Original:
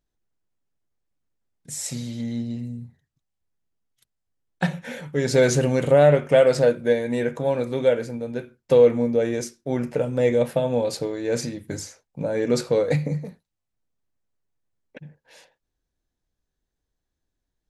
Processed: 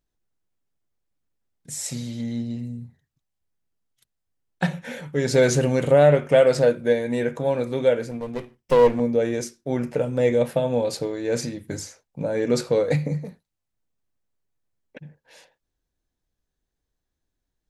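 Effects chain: 8.11–9 minimum comb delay 0.36 ms

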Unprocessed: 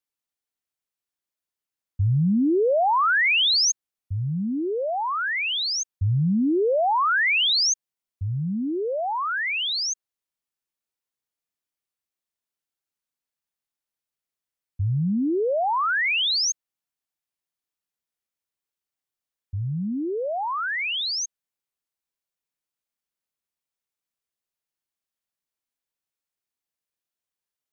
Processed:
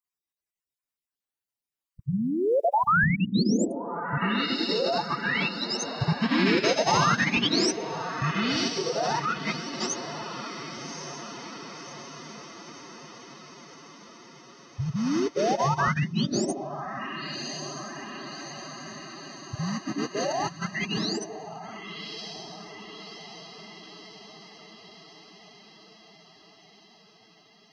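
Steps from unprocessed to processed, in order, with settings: random spectral dropouts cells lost 29%; diffused feedback echo 1.144 s, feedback 63%, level -10.5 dB; formant-preserving pitch shift +6 st

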